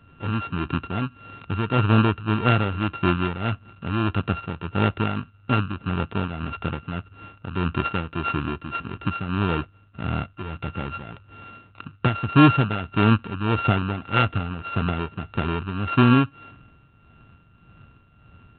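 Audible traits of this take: a buzz of ramps at a fixed pitch in blocks of 32 samples; tremolo triangle 1.7 Hz, depth 65%; µ-law

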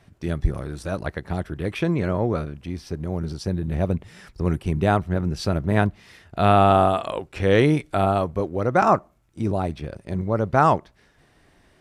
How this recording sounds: noise floor -60 dBFS; spectral tilt -6.5 dB/oct

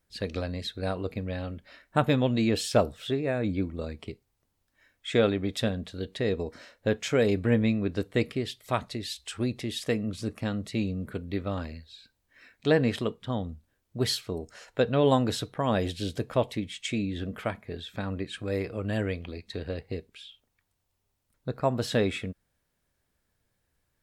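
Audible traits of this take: noise floor -77 dBFS; spectral tilt -5.5 dB/oct

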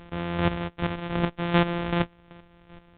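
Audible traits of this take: a buzz of ramps at a fixed pitch in blocks of 256 samples; chopped level 2.6 Hz, depth 65%, duty 25%; µ-law

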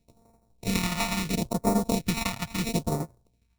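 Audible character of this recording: a buzz of ramps at a fixed pitch in blocks of 64 samples; tremolo saw down 12 Hz, depth 60%; aliases and images of a low sample rate 1600 Hz, jitter 0%; phasing stages 2, 0.74 Hz, lowest notch 370–2800 Hz

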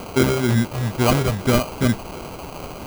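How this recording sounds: a quantiser's noise floor 6-bit, dither triangular; phasing stages 6, 2.2 Hz, lowest notch 250–1600 Hz; aliases and images of a low sample rate 1800 Hz, jitter 0%

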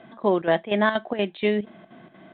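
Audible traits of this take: chopped level 4.2 Hz, depth 65%, duty 75%; µ-law

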